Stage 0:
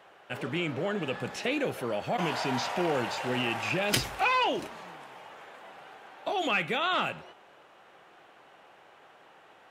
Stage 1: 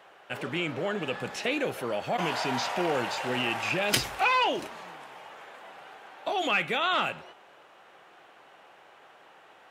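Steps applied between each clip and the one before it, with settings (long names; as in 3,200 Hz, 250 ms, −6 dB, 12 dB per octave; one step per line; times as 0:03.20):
low-shelf EQ 310 Hz −5 dB
level +2 dB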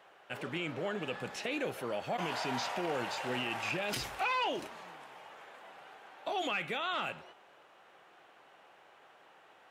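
brickwall limiter −19.5 dBFS, peak gain reduction 10 dB
level −5.5 dB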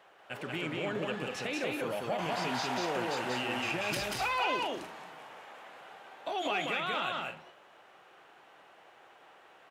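loudspeakers that aren't time-aligned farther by 64 metres −2 dB, 79 metres −10 dB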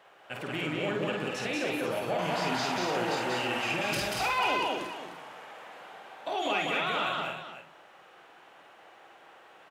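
multi-tap delay 50/303 ms −4/−10 dB
level +1.5 dB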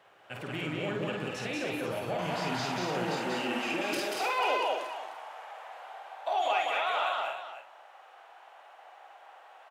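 high-pass filter sweep 89 Hz → 720 Hz, 0:02.41–0:05.02
level −3 dB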